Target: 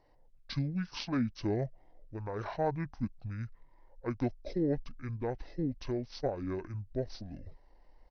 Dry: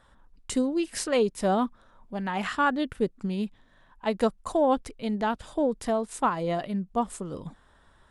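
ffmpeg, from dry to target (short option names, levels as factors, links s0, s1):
-af "asubboost=boost=4.5:cutoff=77,asetrate=24046,aresample=44100,atempo=1.83401,volume=0.447"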